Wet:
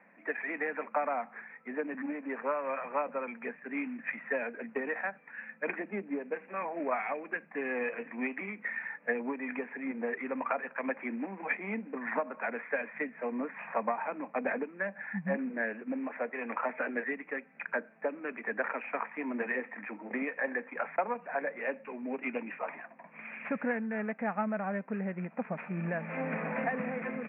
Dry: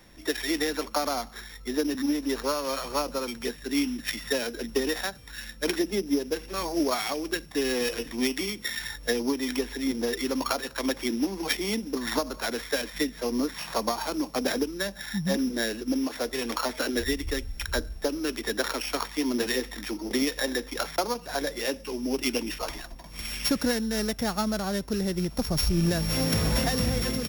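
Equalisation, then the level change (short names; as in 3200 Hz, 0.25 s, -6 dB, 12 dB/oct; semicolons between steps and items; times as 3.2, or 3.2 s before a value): brick-wall FIR high-pass 170 Hz; rippled Chebyshev low-pass 2500 Hz, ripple 3 dB; bell 340 Hz -13 dB 0.72 oct; 0.0 dB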